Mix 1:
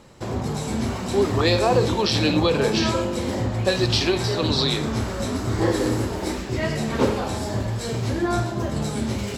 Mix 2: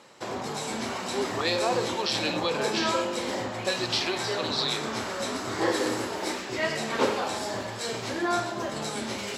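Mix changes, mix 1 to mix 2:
speech -5.5 dB; master: add frequency weighting A

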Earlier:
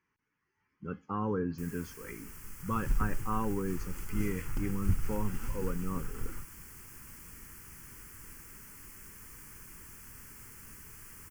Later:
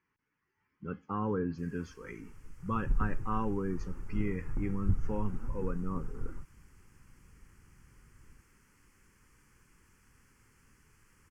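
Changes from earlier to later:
first sound -10.5 dB; second sound: add Gaussian low-pass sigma 6.8 samples; master: add distance through air 60 m

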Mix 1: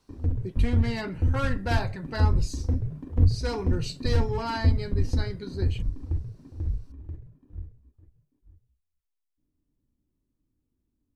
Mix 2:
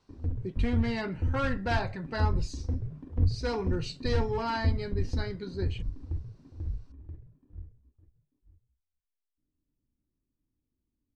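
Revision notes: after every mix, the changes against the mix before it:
background -5.5 dB; master: add distance through air 82 m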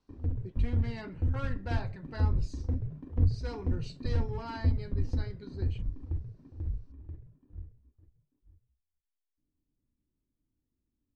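speech -9.5 dB

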